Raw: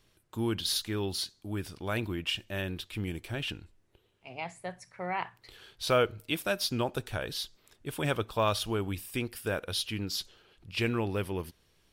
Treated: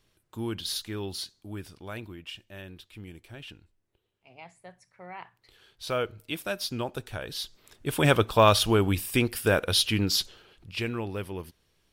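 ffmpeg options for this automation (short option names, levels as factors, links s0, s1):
-af "volume=6.31,afade=t=out:st=1.36:d=0.81:silence=0.446684,afade=t=in:st=5.22:d=1.21:silence=0.421697,afade=t=in:st=7.27:d=0.79:silence=0.298538,afade=t=out:st=10.11:d=0.74:silence=0.281838"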